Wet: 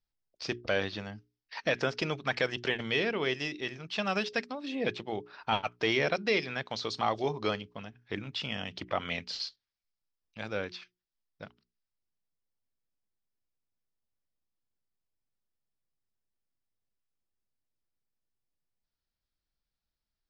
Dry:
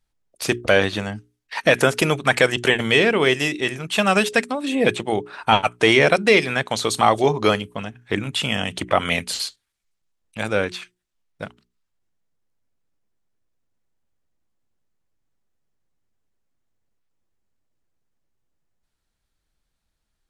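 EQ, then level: ladder low-pass 5700 Hz, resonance 65%; air absorption 120 m; -2.0 dB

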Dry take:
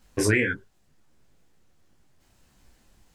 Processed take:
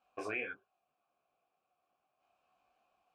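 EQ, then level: vowel filter a; bell 1400 Hz +4.5 dB 2.1 oct; -1.0 dB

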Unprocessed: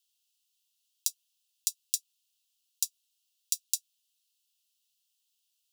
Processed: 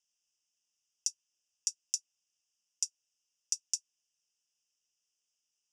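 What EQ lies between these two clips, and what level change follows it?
Butterworth band-stop 4200 Hz, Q 2.5; ladder low-pass 6600 Hz, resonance 40%; bell 3400 Hz -12.5 dB 0.5 oct; +8.0 dB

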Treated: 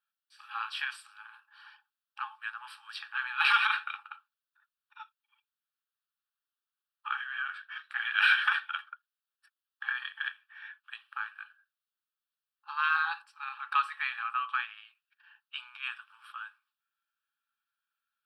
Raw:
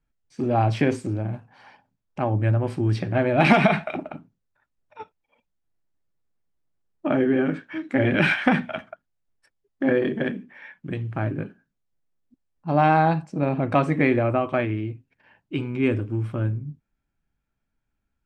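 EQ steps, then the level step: brick-wall FIR high-pass 830 Hz; fixed phaser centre 1400 Hz, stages 8; +2.0 dB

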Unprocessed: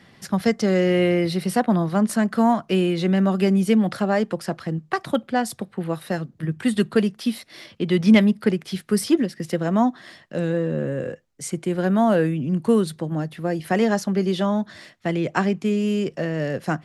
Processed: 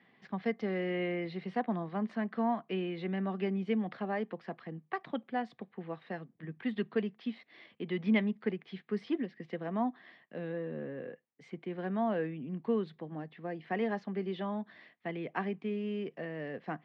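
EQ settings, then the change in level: speaker cabinet 270–2900 Hz, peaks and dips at 340 Hz -5 dB, 570 Hz -8 dB, 920 Hz -3 dB, 1400 Hz -9 dB, 2700 Hz -4 dB; -8.5 dB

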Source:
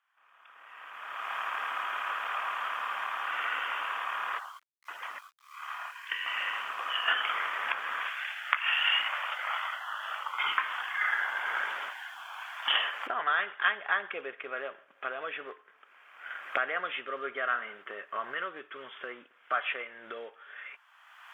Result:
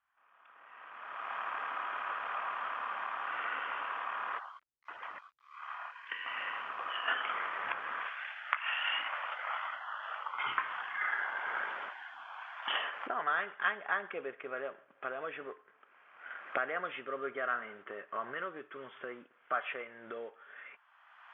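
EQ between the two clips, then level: tape spacing loss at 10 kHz 31 dB; bell 68 Hz +8 dB 0.27 oct; low shelf 180 Hz +9 dB; 0.0 dB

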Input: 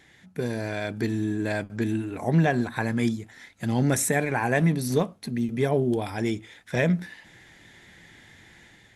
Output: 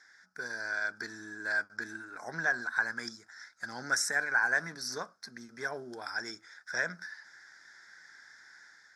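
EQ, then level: double band-pass 2800 Hz, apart 1.8 oct; +8.5 dB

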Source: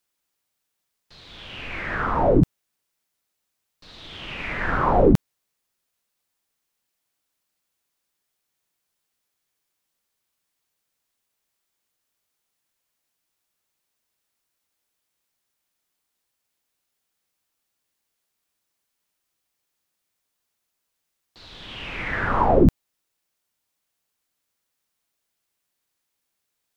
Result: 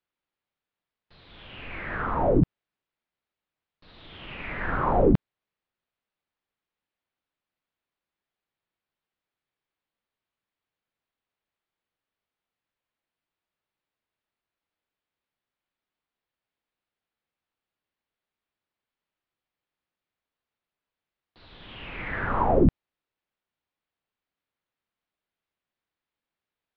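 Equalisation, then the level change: LPF 4700 Hz 24 dB/oct; air absorption 220 m; -3.5 dB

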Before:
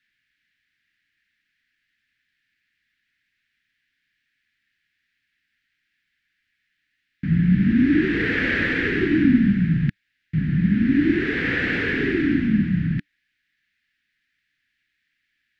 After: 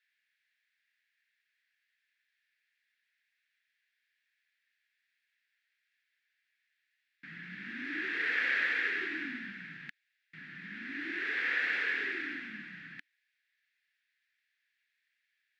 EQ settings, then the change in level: HPF 920 Hz 12 dB/oct; notch 3000 Hz, Q 21; -6.5 dB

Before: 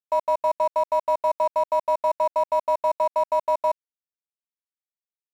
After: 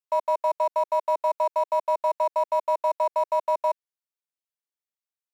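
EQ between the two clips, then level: HPF 410 Hz 24 dB/oct; -1.5 dB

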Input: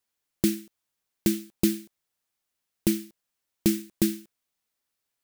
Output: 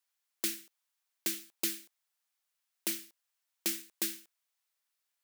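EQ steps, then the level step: HPF 810 Hz 12 dB/oct; -1.5 dB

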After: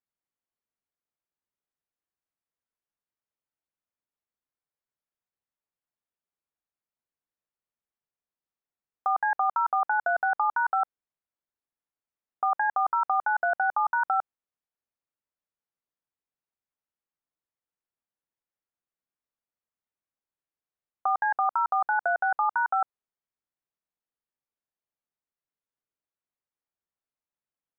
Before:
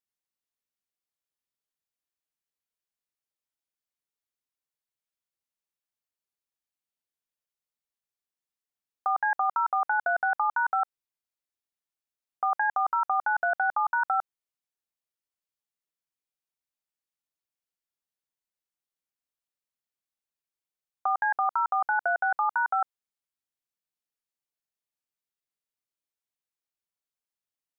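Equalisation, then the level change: LPF 1700 Hz 12 dB/oct; +1.5 dB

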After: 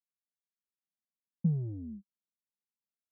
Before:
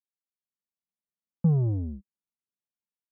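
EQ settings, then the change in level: band-pass 210 Hz, Q 2.2; -2.5 dB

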